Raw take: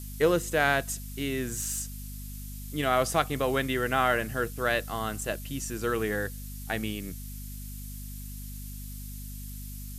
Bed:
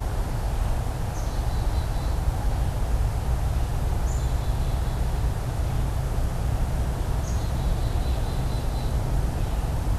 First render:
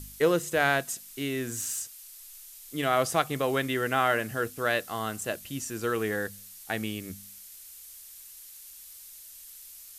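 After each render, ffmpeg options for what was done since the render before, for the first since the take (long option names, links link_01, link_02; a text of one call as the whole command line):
ffmpeg -i in.wav -af "bandreject=frequency=50:width_type=h:width=4,bandreject=frequency=100:width_type=h:width=4,bandreject=frequency=150:width_type=h:width=4,bandreject=frequency=200:width_type=h:width=4,bandreject=frequency=250:width_type=h:width=4" out.wav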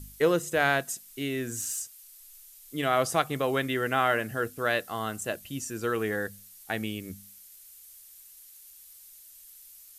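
ffmpeg -i in.wav -af "afftdn=noise_reduction=6:noise_floor=-48" out.wav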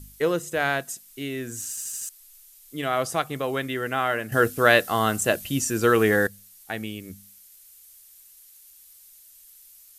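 ffmpeg -i in.wav -filter_complex "[0:a]asplit=8[link_01][link_02][link_03][link_04][link_05][link_06][link_07][link_08];[link_01]atrim=end=1.772[link_09];[link_02]atrim=start=1.688:end=1.772[link_10];[link_03]atrim=start=1.688:end=1.772[link_11];[link_04]atrim=start=1.688:end=1.772[link_12];[link_05]atrim=start=1.688:end=1.772[link_13];[link_06]atrim=start=2.088:end=4.322[link_14];[link_07]atrim=start=4.318:end=6.272,asetpts=PTS-STARTPTS,volume=10dB[link_15];[link_08]atrim=start=6.268[link_16];[link_09][link_10]acrossfade=duration=0.004:curve1=hsin:curve2=hsin[link_17];[link_17][link_11]acrossfade=duration=0.004:curve1=hsin:curve2=hsin[link_18];[link_18][link_12]acrossfade=duration=0.004:curve1=hsin:curve2=hsin[link_19];[link_19][link_13]acrossfade=duration=0.004:curve1=hsin:curve2=hsin[link_20];[link_20][link_14]acrossfade=duration=0.004:curve1=hsin:curve2=hsin[link_21];[link_21][link_15]acrossfade=duration=0.004:curve1=hsin:curve2=hsin[link_22];[link_22][link_16]acrossfade=duration=0.004:curve1=hsin:curve2=hsin" out.wav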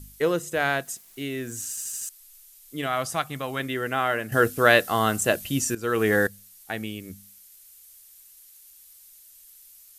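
ffmpeg -i in.wav -filter_complex "[0:a]asettb=1/sr,asplit=3[link_01][link_02][link_03];[link_01]atrim=end=0.854[link_04];[link_02]atrim=start=0.85:end=1.62,asetpts=PTS-STARTPTS,afade=type=in:duration=0.004:curve=qsin,afade=type=out:start_time=0.766:duration=0.004:curve=qsin,aeval=exprs='val(0)*gte(abs(val(0)),0.00282)':channel_layout=same[link_05];[link_03]atrim=start=1.616[link_06];[link_04][link_05]acrossfade=duration=0.004:curve1=hsin:curve2=qsin[link_07];[link_07][link_06]acrossfade=duration=0.004:curve1=qsin:curve2=hsin,asettb=1/sr,asplit=3[link_08][link_09][link_10];[link_08]atrim=end=2.864[link_11];[link_09]atrim=start=2.86:end=3.6,asetpts=PTS-STARTPTS,afade=type=in:duration=0.004:curve=qsin,afade=type=out:start_time=0.736:duration=0.004:curve=qsin,equalizer=frequency=420:width=1.5:gain=-8.5[link_12];[link_10]atrim=start=3.596[link_13];[link_11][link_12]acrossfade=duration=0.004:curve1=hsin:curve2=qsin[link_14];[link_14][link_13]acrossfade=duration=0.004:curve1=qsin:curve2=hsin,asplit=2[link_15][link_16];[link_15]atrim=end=5.75,asetpts=PTS-STARTPTS,afade=type=out:start_time=5.746:duration=0.004:curve=hsin:silence=0.158489[link_17];[link_16]atrim=start=5.75,asetpts=PTS-STARTPTS,afade=type=in:duration=0.42:silence=0.158489[link_18];[link_17][link_18]concat=n=2:v=0:a=1" out.wav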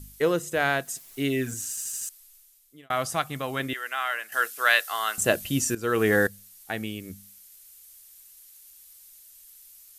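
ffmpeg -i in.wav -filter_complex "[0:a]asettb=1/sr,asplit=3[link_01][link_02][link_03];[link_01]atrim=end=0.944[link_04];[link_02]atrim=start=0.94:end=1.54,asetpts=PTS-STARTPTS,afade=type=in:duration=0.004:curve=qsin,afade=type=out:start_time=0.596:duration=0.004:curve=qsin,aecho=1:1:7.2:0.99,atrim=end_sample=26460[link_05];[link_03]atrim=start=1.536[link_06];[link_04][link_05]acrossfade=duration=0.004:curve1=hsin:curve2=qsin[link_07];[link_07][link_06]acrossfade=duration=0.004:curve1=qsin:curve2=hsin,asettb=1/sr,asplit=3[link_08][link_09][link_10];[link_08]atrim=end=3.734[link_11];[link_09]atrim=start=3.73:end=5.18,asetpts=PTS-STARTPTS,afade=type=in:duration=0.004:curve=qsin,afade=type=out:start_time=1.446:duration=0.004:curve=qsin,highpass=1200[link_12];[link_10]atrim=start=5.176[link_13];[link_11][link_12]acrossfade=duration=0.004:curve1=hsin:curve2=qsin[link_14];[link_14][link_13]acrossfade=duration=0.004:curve1=qsin:curve2=hsin,asplit=2[link_15][link_16];[link_15]atrim=end=2.9,asetpts=PTS-STARTPTS,afade=type=out:start_time=2.06:duration=0.84[link_17];[link_16]atrim=start=2.9,asetpts=PTS-STARTPTS,afade=type=in:duration=0.004:curve=hsin[link_18];[link_17][link_18]concat=n=2:v=0:a=1" out.wav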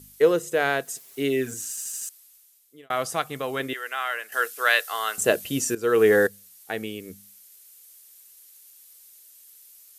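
ffmpeg -i in.wav -af "highpass=frequency=180:poles=1,equalizer=frequency=440:width_type=o:width=0.47:gain=8.5" out.wav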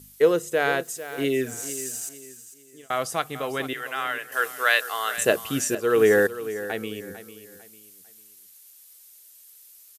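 ffmpeg -i in.wav -af "aecho=1:1:449|898|1347:0.211|0.0697|0.023" out.wav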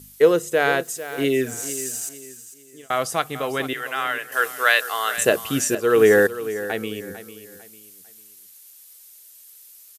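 ffmpeg -i in.wav -af "volume=3.5dB,alimiter=limit=-3dB:level=0:latency=1" out.wav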